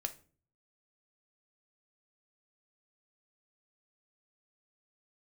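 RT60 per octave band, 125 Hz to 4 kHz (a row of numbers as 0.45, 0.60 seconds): 0.75, 0.60, 0.45, 0.35, 0.35, 0.30 seconds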